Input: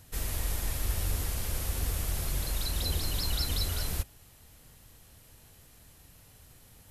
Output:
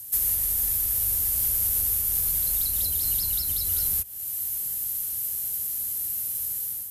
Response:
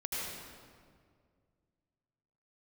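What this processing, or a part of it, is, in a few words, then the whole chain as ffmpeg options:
FM broadcast chain: -filter_complex "[0:a]highpass=f=48:p=1,dynaudnorm=f=140:g=5:m=3.16,acrossover=split=170|440|3600[s0][s1][s2][s3];[s0]acompressor=threshold=0.0501:ratio=4[s4];[s1]acompressor=threshold=0.00501:ratio=4[s5];[s2]acompressor=threshold=0.00794:ratio=4[s6];[s3]acompressor=threshold=0.01:ratio=4[s7];[s4][s5][s6][s7]amix=inputs=4:normalize=0,aemphasis=mode=production:type=50fm,alimiter=limit=0.0944:level=0:latency=1:release=421,asoftclip=type=hard:threshold=0.075,lowpass=f=15000:w=0.5412,lowpass=f=15000:w=1.3066,aemphasis=mode=production:type=50fm,volume=0.596"

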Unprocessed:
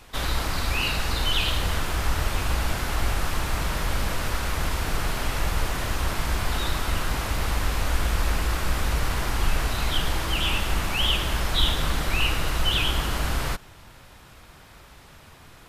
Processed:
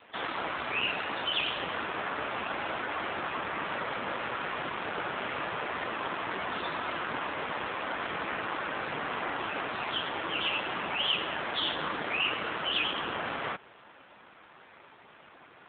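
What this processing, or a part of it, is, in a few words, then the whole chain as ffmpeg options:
telephone: -af "highpass=280,lowpass=3300,volume=1.19" -ar 8000 -c:a libopencore_amrnb -b:a 7400

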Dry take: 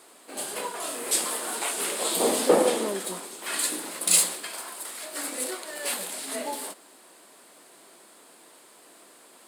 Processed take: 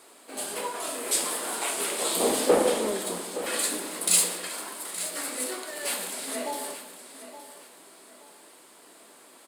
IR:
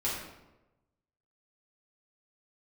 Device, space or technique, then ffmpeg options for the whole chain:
saturated reverb return: -filter_complex "[0:a]asplit=2[s0][s1];[1:a]atrim=start_sample=2205[s2];[s1][s2]afir=irnorm=-1:irlink=0,asoftclip=type=tanh:threshold=0.2,volume=0.335[s3];[s0][s3]amix=inputs=2:normalize=0,aecho=1:1:869|1738|2607:0.224|0.0649|0.0188,volume=0.708"

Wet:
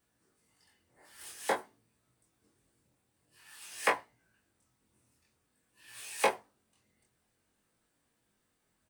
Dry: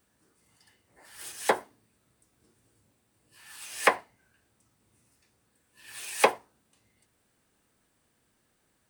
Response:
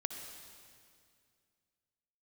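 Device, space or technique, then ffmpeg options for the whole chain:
double-tracked vocal: -filter_complex "[0:a]asplit=2[s0][s1];[s1]adelay=24,volume=0.501[s2];[s0][s2]amix=inputs=2:normalize=0,flanger=delay=17:depth=6.9:speed=0.5,volume=0.668"

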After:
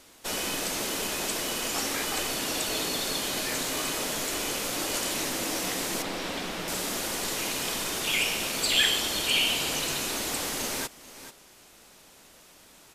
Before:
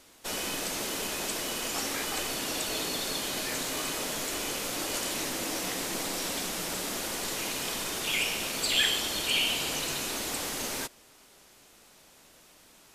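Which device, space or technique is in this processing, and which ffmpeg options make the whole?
ducked delay: -filter_complex "[0:a]asplit=3[s0][s1][s2];[s1]adelay=437,volume=0.355[s3];[s2]apad=whole_len=590328[s4];[s3][s4]sidechaincompress=threshold=0.00631:ratio=8:attack=16:release=594[s5];[s0][s5]amix=inputs=2:normalize=0,asettb=1/sr,asplit=3[s6][s7][s8];[s6]atrim=end=6.024[s9];[s7]atrim=start=6.02:end=6.68,asetpts=PTS-STARTPTS,afade=t=in:d=0.004:c=qsin,afade=t=out:st=0.656:d=0.004:c=qsin,acrossover=split=4300[s10][s11];[s11]acompressor=threshold=0.00398:ratio=4:attack=1:release=60[s12];[s10][s12]amix=inputs=2:normalize=0[s13];[s8]atrim=start=6.676[s14];[s9][s13]acrossfade=d=0.004:c1=hsin:c2=qsin[s15];[s15][s14]acrossfade=d=0.004:c1=qsin:c2=hsin,volume=1.33"

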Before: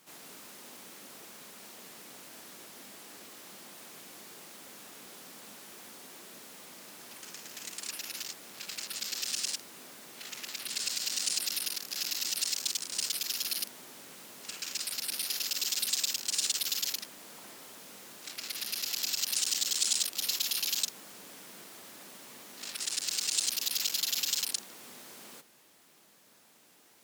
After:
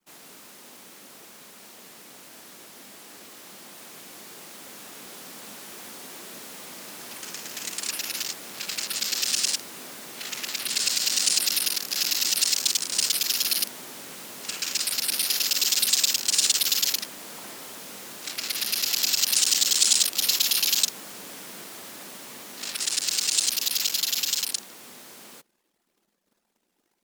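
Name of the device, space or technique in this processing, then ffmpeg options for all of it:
voice memo with heavy noise removal: -af "anlmdn=0.0001,dynaudnorm=f=710:g=13:m=2.24,volume=1.26"

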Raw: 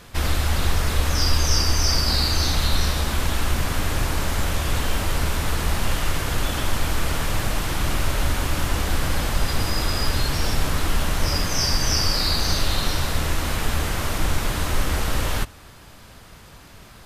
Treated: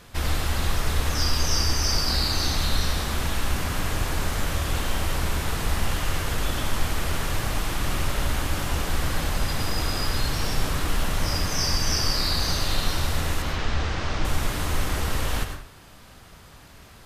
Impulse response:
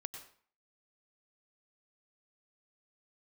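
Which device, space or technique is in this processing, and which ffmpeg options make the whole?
bathroom: -filter_complex "[0:a]asettb=1/sr,asplit=3[s0][s1][s2];[s0]atrim=end=13.424[s3];[s1]atrim=start=13.42:end=14.25,asetpts=PTS-STARTPTS,afade=t=in:d=0.004:c=qsin,afade=t=out:st=0.826:d=0.004:c=qsin,lowpass=f=5800:w=0.5412,lowpass=f=5800:w=1.3066[s4];[s2]atrim=start=14.246[s5];[s3][s4]acrossfade=d=0.004:c1=hsin:c2=qsin[s6];[s6][s5]acrossfade=d=0.004:c1=qsin:c2=hsin[s7];[1:a]atrim=start_sample=2205[s8];[s7][s8]afir=irnorm=-1:irlink=0"

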